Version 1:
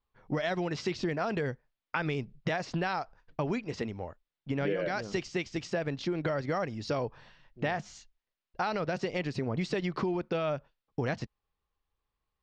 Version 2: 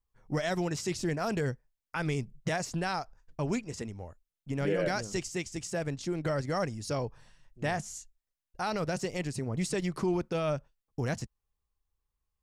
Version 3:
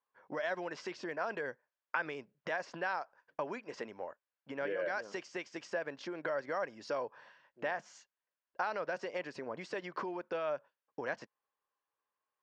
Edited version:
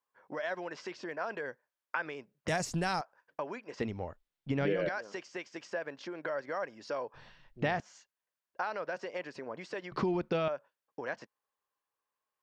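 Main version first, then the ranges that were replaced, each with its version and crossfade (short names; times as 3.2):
3
2.48–3.01 from 2
3.8–4.89 from 1
7.14–7.8 from 1
9.92–10.48 from 1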